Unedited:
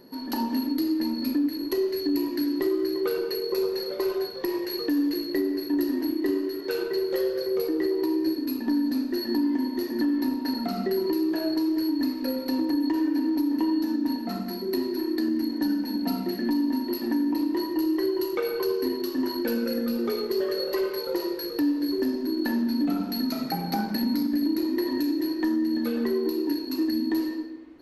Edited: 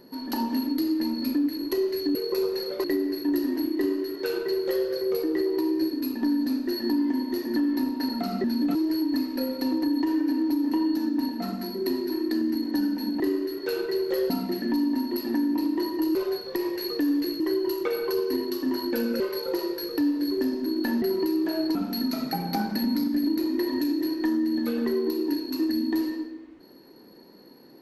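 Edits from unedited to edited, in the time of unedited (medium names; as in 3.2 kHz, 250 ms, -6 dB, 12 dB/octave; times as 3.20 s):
2.15–3.35 s: delete
4.04–5.29 s: move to 17.92 s
6.22–7.32 s: copy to 16.07 s
10.89–11.62 s: swap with 22.63–22.94 s
19.72–20.81 s: delete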